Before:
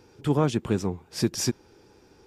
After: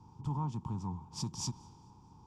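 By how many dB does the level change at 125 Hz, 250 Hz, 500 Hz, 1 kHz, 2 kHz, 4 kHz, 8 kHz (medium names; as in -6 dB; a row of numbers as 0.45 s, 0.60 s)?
-8.0 dB, -14.5 dB, -26.5 dB, -7.5 dB, under -25 dB, -10.5 dB, -10.0 dB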